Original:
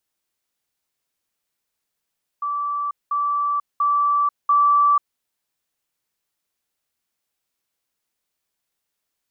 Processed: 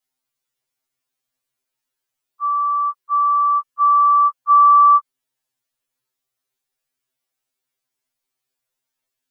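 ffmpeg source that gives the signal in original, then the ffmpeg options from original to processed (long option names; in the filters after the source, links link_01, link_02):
-f lavfi -i "aevalsrc='pow(10,(-21.5+3*floor(t/0.69))/20)*sin(2*PI*1160*t)*clip(min(mod(t,0.69),0.49-mod(t,0.69))/0.005,0,1)':duration=2.76:sample_rate=44100"
-af "afftfilt=real='re*2.45*eq(mod(b,6),0)':imag='im*2.45*eq(mod(b,6),0)':win_size=2048:overlap=0.75"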